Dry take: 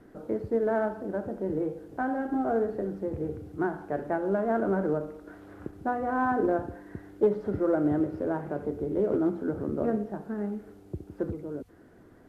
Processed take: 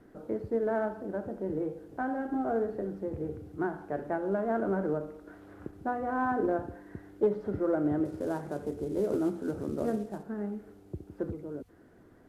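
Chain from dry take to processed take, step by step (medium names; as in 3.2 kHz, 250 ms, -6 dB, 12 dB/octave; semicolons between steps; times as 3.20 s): 8.05–10.23 s: CVSD coder 64 kbps; trim -3 dB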